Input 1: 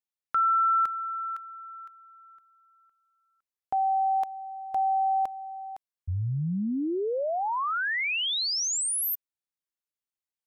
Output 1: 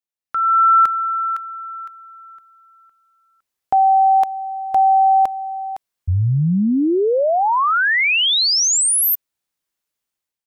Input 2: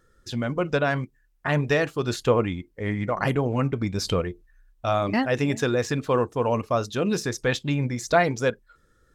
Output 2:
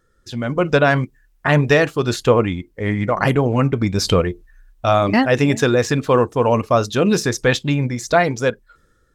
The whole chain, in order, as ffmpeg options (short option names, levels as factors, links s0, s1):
-af "dynaudnorm=f=200:g=5:m=4.47,volume=0.891"